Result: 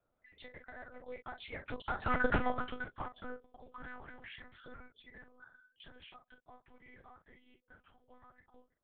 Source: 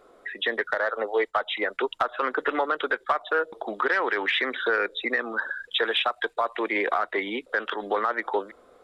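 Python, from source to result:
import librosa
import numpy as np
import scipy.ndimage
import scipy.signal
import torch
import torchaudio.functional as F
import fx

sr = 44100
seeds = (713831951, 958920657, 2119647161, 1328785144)

y = fx.doppler_pass(x, sr, speed_mps=20, closest_m=2.4, pass_at_s=2.25)
y = fx.room_early_taps(y, sr, ms=(26, 44), db=(-12.5, -8.5))
y = fx.lpc_monotone(y, sr, seeds[0], pitch_hz=250.0, order=8)
y = y * librosa.db_to_amplitude(-2.0)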